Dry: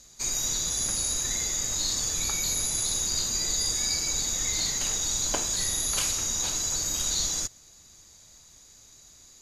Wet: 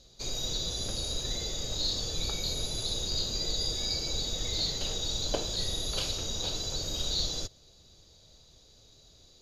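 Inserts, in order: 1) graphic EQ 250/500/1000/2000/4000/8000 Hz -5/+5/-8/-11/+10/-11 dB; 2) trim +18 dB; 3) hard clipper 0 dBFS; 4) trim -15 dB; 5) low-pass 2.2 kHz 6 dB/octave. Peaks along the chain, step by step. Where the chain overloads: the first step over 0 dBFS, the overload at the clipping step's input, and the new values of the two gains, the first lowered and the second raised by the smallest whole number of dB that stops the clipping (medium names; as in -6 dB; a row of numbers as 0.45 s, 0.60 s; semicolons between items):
-13.5 dBFS, +4.5 dBFS, 0.0 dBFS, -15.0 dBFS, -15.5 dBFS; step 2, 4.5 dB; step 2 +13 dB, step 4 -10 dB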